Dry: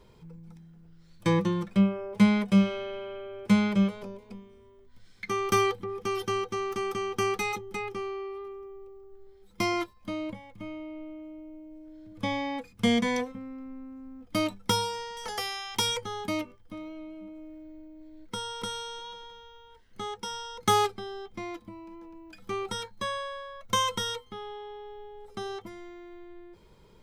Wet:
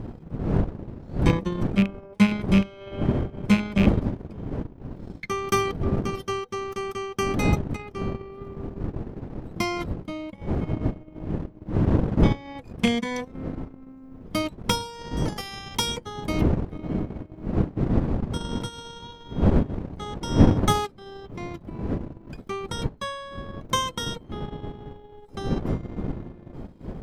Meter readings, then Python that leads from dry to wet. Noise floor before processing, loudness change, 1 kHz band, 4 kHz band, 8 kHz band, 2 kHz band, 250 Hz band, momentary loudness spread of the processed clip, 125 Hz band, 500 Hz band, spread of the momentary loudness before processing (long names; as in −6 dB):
−56 dBFS, +3.0 dB, +0.5 dB, +0.5 dB, +0.5 dB, +1.5 dB, +4.5 dB, 16 LU, +10.5 dB, +2.5 dB, 21 LU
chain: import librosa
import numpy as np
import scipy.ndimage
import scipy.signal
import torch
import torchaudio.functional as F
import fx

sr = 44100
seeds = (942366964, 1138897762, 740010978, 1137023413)

y = fx.rattle_buzz(x, sr, strikes_db=-23.0, level_db=-17.0)
y = fx.dmg_wind(y, sr, seeds[0], corner_hz=240.0, level_db=-28.0)
y = fx.transient(y, sr, attack_db=3, sustain_db=-12)